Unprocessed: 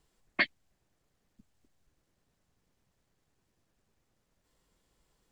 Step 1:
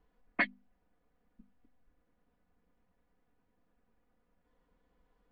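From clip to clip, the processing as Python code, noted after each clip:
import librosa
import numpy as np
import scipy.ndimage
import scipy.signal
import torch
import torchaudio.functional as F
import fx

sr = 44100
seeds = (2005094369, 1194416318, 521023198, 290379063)

y = scipy.signal.sosfilt(scipy.signal.butter(2, 1800.0, 'lowpass', fs=sr, output='sos'), x)
y = fx.hum_notches(y, sr, base_hz=50, count=5)
y = y + 0.75 * np.pad(y, (int(4.1 * sr / 1000.0), 0))[:len(y)]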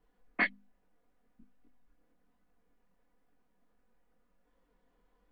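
y = fx.peak_eq(x, sr, hz=76.0, db=-13.0, octaves=0.87)
y = fx.chorus_voices(y, sr, voices=2, hz=1.2, base_ms=23, depth_ms=3.0, mix_pct=50)
y = F.gain(torch.from_numpy(y), 4.0).numpy()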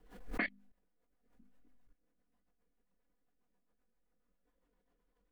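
y = fx.level_steps(x, sr, step_db=16)
y = fx.rotary(y, sr, hz=7.5)
y = fx.pre_swell(y, sr, db_per_s=83.0)
y = F.gain(torch.from_numpy(y), 3.5).numpy()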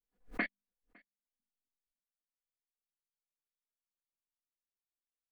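y = x + 10.0 ** (-11.5 / 20.0) * np.pad(x, (int(557 * sr / 1000.0), 0))[:len(x)]
y = fx.upward_expand(y, sr, threshold_db=-57.0, expansion=2.5)
y = F.gain(torch.from_numpy(y), 3.0).numpy()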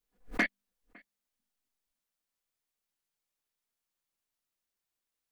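y = np.clip(x, -10.0 ** (-27.0 / 20.0), 10.0 ** (-27.0 / 20.0))
y = F.gain(torch.from_numpy(y), 7.0).numpy()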